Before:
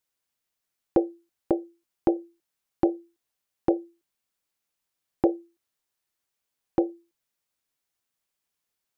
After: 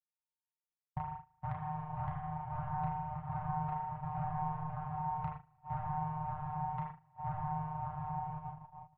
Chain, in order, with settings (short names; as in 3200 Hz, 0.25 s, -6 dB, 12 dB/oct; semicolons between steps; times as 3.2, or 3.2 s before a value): vocoder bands 4, saw 152 Hz; diffused feedback echo 0.619 s, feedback 45%, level -4 dB; compressor 10:1, threshold -36 dBFS, peak gain reduction 20 dB; doubler 33 ms -5 dB; soft clip -32.5 dBFS, distortion -16 dB; inverse Chebyshev band-stop 210–550 Hz, stop band 40 dB; bell 720 Hz +4.5 dB 0.89 oct; notches 50/100/150/200/250/300 Hz; spring tank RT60 1.7 s, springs 37 ms, chirp 75 ms, DRR 0 dB; gate -50 dBFS, range -22 dB; tilt shelf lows +9 dB, about 1400 Hz; gain +3 dB